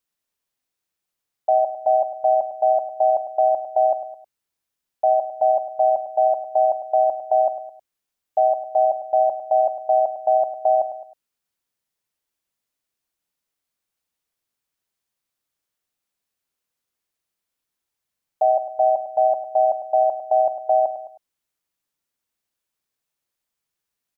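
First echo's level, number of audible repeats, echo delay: -11.5 dB, 3, 102 ms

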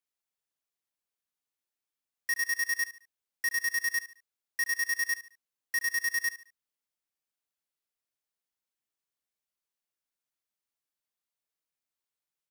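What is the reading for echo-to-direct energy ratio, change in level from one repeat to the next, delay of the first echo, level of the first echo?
-14.0 dB, -9.5 dB, 72 ms, -14.5 dB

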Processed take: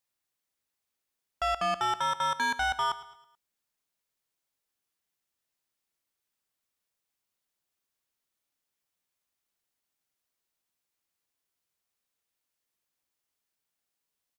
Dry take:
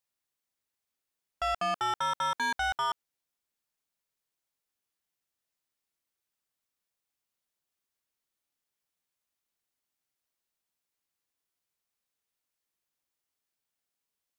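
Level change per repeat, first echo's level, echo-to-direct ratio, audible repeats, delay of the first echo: -7.0 dB, -16.0 dB, -15.0 dB, 3, 108 ms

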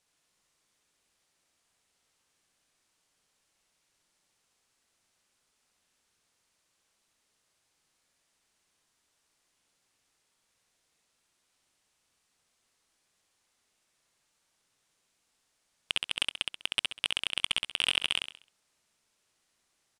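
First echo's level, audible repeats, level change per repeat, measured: -3.5 dB, 4, -9.0 dB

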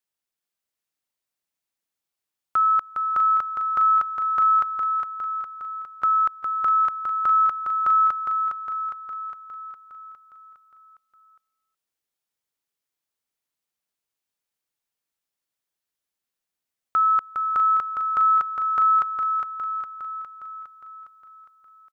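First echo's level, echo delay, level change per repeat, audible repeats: -5.5 dB, 409 ms, -4.5 dB, 7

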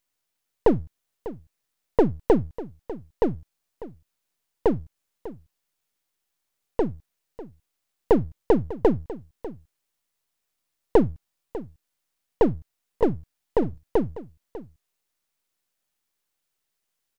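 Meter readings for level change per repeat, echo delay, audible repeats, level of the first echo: no regular repeats, 597 ms, 1, -16.0 dB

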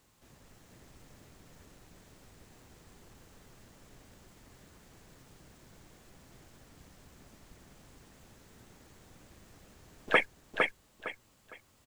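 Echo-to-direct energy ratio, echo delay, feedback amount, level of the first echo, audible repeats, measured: -3.0 dB, 458 ms, 26%, -3.5 dB, 3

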